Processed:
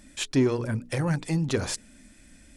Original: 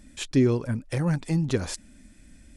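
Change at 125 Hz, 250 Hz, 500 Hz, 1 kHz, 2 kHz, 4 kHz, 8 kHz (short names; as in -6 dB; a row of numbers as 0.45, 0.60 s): -2.0, -1.5, -0.5, +2.5, +2.5, +3.0, +3.0 dB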